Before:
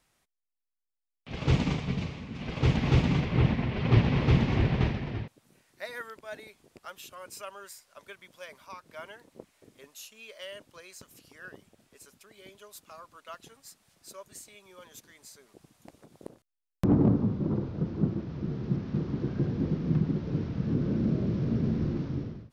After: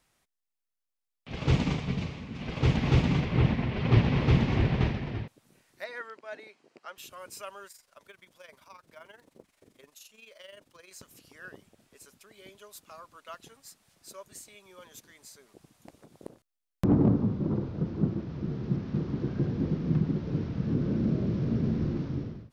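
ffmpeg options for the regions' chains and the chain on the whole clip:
ffmpeg -i in.wav -filter_complex "[0:a]asettb=1/sr,asplit=3[link_01][link_02][link_03];[link_01]atrim=end=5.844[link_04];[link_02]atrim=start=5.84:end=6.98,asetpts=PTS-STARTPTS,afade=type=in:duration=0.004:curve=qsin,afade=type=out:start_time=1.136:duration=0.004:curve=qsin,highpass=260,lowpass=4900,bandreject=frequency=3500:width=8.8[link_05];[link_03]atrim=start=6.976[link_06];[link_04][link_05]acrossfade=duration=0.004:curve1=hsin:curve2=qsin[link_07];[link_07][link_06]acrossfade=duration=0.004:curve1=qsin:curve2=hsin,asettb=1/sr,asplit=3[link_08][link_09][link_10];[link_08]atrim=end=7.674[link_11];[link_09]atrim=start=7.67:end=10.91,asetpts=PTS-STARTPTS,afade=type=in:duration=0.004:curve=qsin,afade=type=out:start_time=3.236:duration=0.004:curve=qsin,acrusher=bits=8:mode=log:mix=0:aa=0.000001,tremolo=f=23:d=0.667,acompressor=threshold=-51dB:ratio=1.5:attack=3.2:release=140:knee=1:detection=peak[link_12];[link_10]atrim=start=10.906[link_13];[link_11][link_12]acrossfade=duration=0.004:curve1=hsin:curve2=qsin[link_14];[link_14][link_13]acrossfade=duration=0.004:curve1=qsin:curve2=hsin" out.wav

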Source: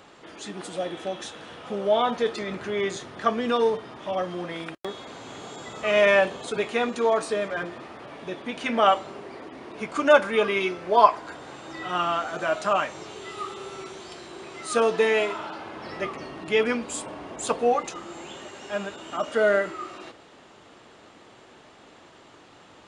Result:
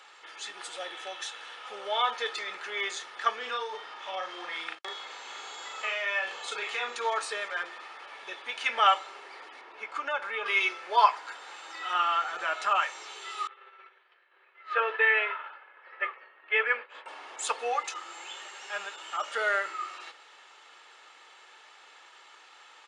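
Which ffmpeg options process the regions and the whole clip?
ffmpeg -i in.wav -filter_complex "[0:a]asettb=1/sr,asplit=3[link_01][link_02][link_03];[link_01]atrim=end=3.364[link_04];[link_02]atrim=start=3.36:end=6.96,asetpts=PTS-STARTPTS,afade=type=in:duration=0.004:curve=qsin,afade=type=out:start_time=3.596:duration=0.004:curve=qsin,lowpass=7900,acompressor=threshold=-24dB:ratio=10:attack=3.2:release=140:knee=1:detection=peak,asplit=2[link_05][link_06];[link_06]adelay=37,volume=-4dB[link_07];[link_05][link_07]amix=inputs=2:normalize=0,atrim=end_sample=158760[link_08];[link_03]atrim=start=6.956[link_09];[link_04][link_08]acrossfade=duration=0.004:curve1=hsin:curve2=qsin[link_10];[link_10][link_09]acrossfade=duration=0.004:curve1=qsin:curve2=hsin,asettb=1/sr,asplit=3[link_11][link_12][link_13];[link_11]atrim=end=9.614[link_14];[link_12]atrim=start=9.61:end=10.46,asetpts=PTS-STARTPTS,afade=type=in:duration=0.004:curve=qsin,afade=type=out:start_time=0.846:duration=0.004:curve=qsin,lowpass=frequency=1700:poles=1,acompressor=threshold=-25dB:ratio=2:attack=3.2:release=140:knee=1:detection=peak[link_15];[link_13]atrim=start=10.456[link_16];[link_14][link_15]acrossfade=duration=0.004:curve1=hsin:curve2=qsin[link_17];[link_17][link_16]acrossfade=duration=0.004:curve1=qsin:curve2=hsin,asettb=1/sr,asplit=3[link_18][link_19][link_20];[link_18]atrim=end=11.934[link_21];[link_19]atrim=start=11.93:end=12.82,asetpts=PTS-STARTPTS,afade=type=in:duration=0.004:curve=qsin,afade=type=out:start_time=0.886:duration=0.004:curve=qsin,bass=frequency=250:gain=7,treble=frequency=4000:gain=-6,acompressor=mode=upward:threshold=-27dB:ratio=2.5:attack=3.2:release=140:knee=2.83:detection=peak[link_22];[link_20]atrim=start=12.816[link_23];[link_21][link_22]acrossfade=duration=0.004:curve1=hsin:curve2=qsin[link_24];[link_24][link_23]acrossfade=duration=0.004:curve1=qsin:curve2=hsin,asettb=1/sr,asplit=3[link_25][link_26][link_27];[link_25]atrim=end=13.474[link_28];[link_26]atrim=start=13.47:end=17.06,asetpts=PTS-STARTPTS,afade=type=in:duration=0.004:curve=qsin,afade=type=out:start_time=3.586:duration=0.004:curve=qsin,agate=range=-33dB:threshold=-30dB:ratio=3:release=100:detection=peak,highpass=frequency=290:width=0.5412,highpass=frequency=290:width=1.3066,equalizer=frequency=330:width_type=q:width=4:gain=-4,equalizer=frequency=530:width_type=q:width=4:gain=5,equalizer=frequency=800:width_type=q:width=4:gain=-5,equalizer=frequency=1700:width_type=q:width=4:gain=6,lowpass=frequency=2700:width=0.5412,lowpass=frequency=2700:width=1.3066[link_29];[link_27]atrim=start=17.056[link_30];[link_28][link_29]acrossfade=duration=0.004:curve1=hsin:curve2=qsin[link_31];[link_31][link_30]acrossfade=duration=0.004:curve1=qsin:curve2=hsin,highpass=1200,highshelf=frequency=8300:gain=-8.5,aecho=1:1:2.3:0.4,volume=2dB" out.wav

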